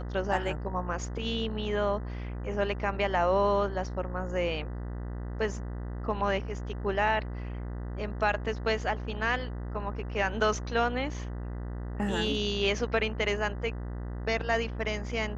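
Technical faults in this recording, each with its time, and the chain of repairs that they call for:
buzz 60 Hz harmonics 33 -36 dBFS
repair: de-hum 60 Hz, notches 33

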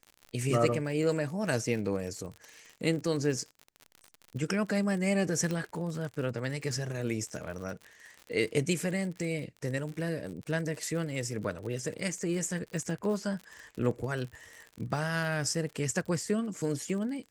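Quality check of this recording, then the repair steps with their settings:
crackle 55/s -37 dBFS
5.51 pop -20 dBFS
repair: de-click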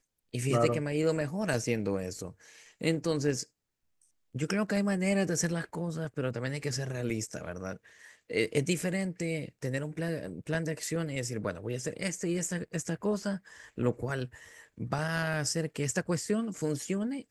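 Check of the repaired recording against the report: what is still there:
none

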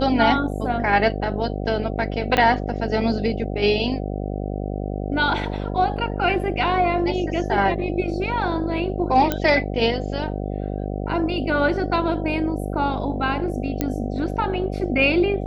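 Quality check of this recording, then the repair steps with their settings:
buzz 50 Hz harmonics 15 -27 dBFS
2.37 pop -6 dBFS
9.32 pop -7 dBFS
13.81 pop -8 dBFS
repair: de-click; de-hum 50 Hz, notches 15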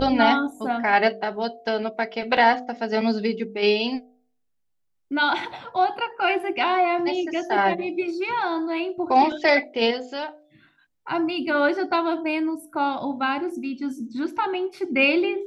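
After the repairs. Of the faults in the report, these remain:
2.37 pop

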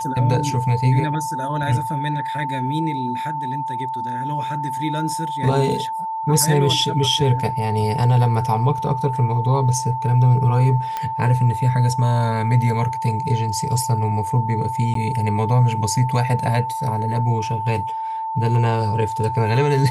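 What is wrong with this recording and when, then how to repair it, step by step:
tone 890 Hz -23 dBFS
10.97 pop -12 dBFS
14.94–14.95 gap 13 ms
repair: de-click; notch 890 Hz, Q 30; interpolate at 14.94, 13 ms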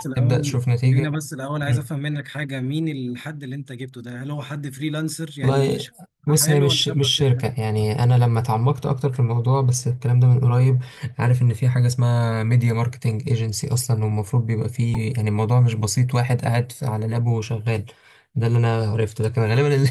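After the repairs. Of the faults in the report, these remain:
none

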